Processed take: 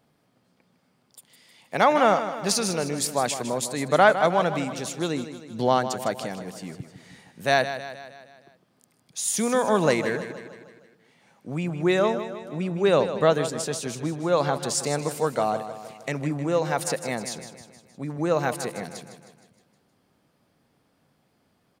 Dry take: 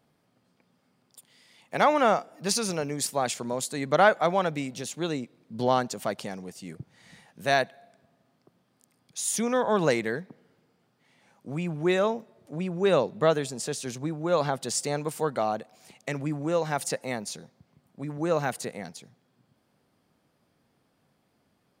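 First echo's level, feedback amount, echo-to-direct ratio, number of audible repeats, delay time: −11.0 dB, 54%, −9.5 dB, 5, 156 ms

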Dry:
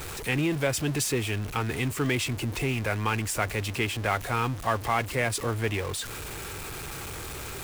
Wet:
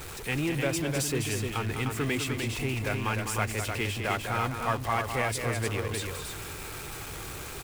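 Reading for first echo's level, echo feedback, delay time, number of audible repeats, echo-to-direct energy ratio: −7.5 dB, repeats not evenly spaced, 203 ms, 2, −3.0 dB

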